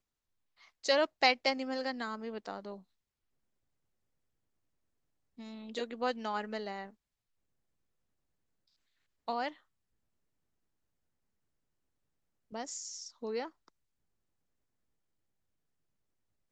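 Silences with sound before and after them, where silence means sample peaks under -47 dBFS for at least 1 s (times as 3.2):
2.79–5.39
6.9–9.28
9.52–12.52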